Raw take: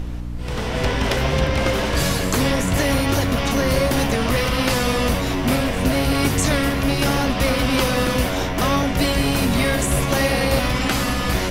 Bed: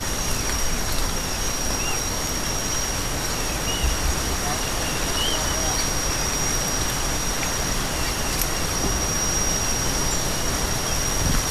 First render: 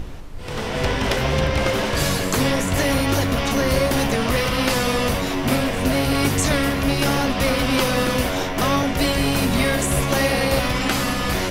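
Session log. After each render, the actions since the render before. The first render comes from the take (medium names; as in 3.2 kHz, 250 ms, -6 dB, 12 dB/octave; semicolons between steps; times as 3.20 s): hum notches 60/120/180/240/300 Hz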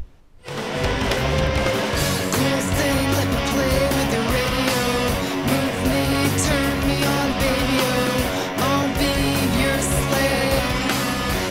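noise print and reduce 16 dB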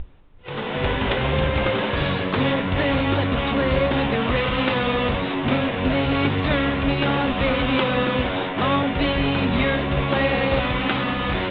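Chebyshev low-pass 3.7 kHz, order 6; band-stop 670 Hz, Q 18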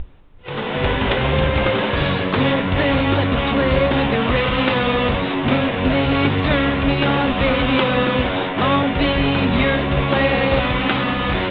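trim +3.5 dB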